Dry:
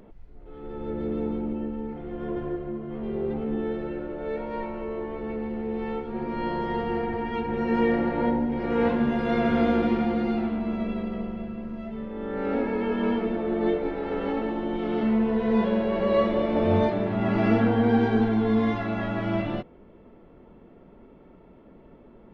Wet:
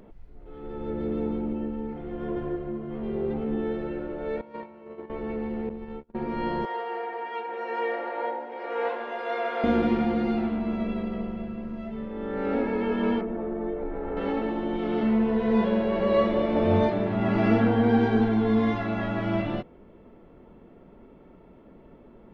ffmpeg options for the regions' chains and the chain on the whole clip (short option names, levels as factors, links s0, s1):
-filter_complex "[0:a]asettb=1/sr,asplit=3[s0][s1][s2];[s0]atrim=end=4.414[s3];[s1]atrim=start=4.41:end=5.1,asetpts=PTS-STARTPTS,afade=t=in:d=0.004:c=qsin,afade=t=out:st=0.686:d=0.004:c=qsin,highpass=f=86:w=0.5412,highpass=f=86:w=1.3066,agate=range=0.2:threshold=0.0282:ratio=16:release=100:detection=peak[s4];[s2]atrim=start=5.096[s5];[s3][s4]acrossfade=d=0.004:c1=hsin:c2=qsin[s6];[s6][s5]acrossfade=d=0.004:c1=qsin:c2=hsin,asettb=1/sr,asplit=3[s7][s8][s9];[s7]atrim=end=5.694[s10];[s8]atrim=start=5.69:end=6.15,asetpts=PTS-STARTPTS,afade=t=in:d=0.004:c=qsin,afade=t=out:st=0.456:d=0.004:c=qsin,agate=range=0.01:threshold=0.0316:ratio=16:release=100:detection=peak,lowshelf=f=280:g=8.5,acompressor=threshold=0.0224:ratio=6:attack=3.2:release=140:knee=1:detection=peak[s11];[s9]atrim=start=6.146[s12];[s10][s11]acrossfade=d=0.004:c1=hsin:c2=qsin[s13];[s13][s12]acrossfade=d=0.004:c1=qsin:c2=hsin,asettb=1/sr,asplit=3[s14][s15][s16];[s14]atrim=end=6.654[s17];[s15]atrim=start=6.65:end=9.64,asetpts=PTS-STARTPTS,afade=t=in:d=0.004:c=qsin,afade=t=out:st=2.986:d=0.004:c=qsin,highpass=f=490:w=0.5412,highpass=f=490:w=1.3066,highshelf=f=3700:g=-7.5[s18];[s16]atrim=start=9.636[s19];[s17][s18]acrossfade=d=0.004:c1=hsin:c2=qsin[s20];[s20][s19]acrossfade=d=0.004:c1=qsin:c2=hsin,asettb=1/sr,asplit=3[s21][s22][s23];[s21]atrim=end=13.214[s24];[s22]atrim=start=13.21:end=14.17,asetpts=PTS-STARTPTS,afade=t=in:d=0.004:c=qsin,afade=t=out:st=0.956:d=0.004:c=qsin,lowpass=1500,asubboost=boost=9:cutoff=70,acompressor=threshold=0.0447:ratio=4:attack=3.2:release=140:knee=1:detection=peak[s25];[s23]atrim=start=14.166[s26];[s24][s25]acrossfade=d=0.004:c1=hsin:c2=qsin[s27];[s27][s26]acrossfade=d=0.004:c1=qsin:c2=hsin"